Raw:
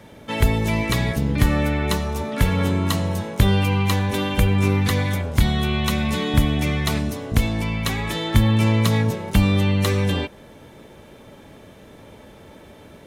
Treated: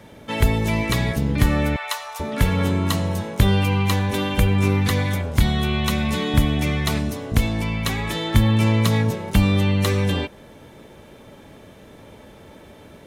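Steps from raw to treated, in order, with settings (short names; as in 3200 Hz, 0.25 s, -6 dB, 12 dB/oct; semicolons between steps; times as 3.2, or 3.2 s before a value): 1.76–2.2 inverse Chebyshev high-pass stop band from 350 Hz, stop band 40 dB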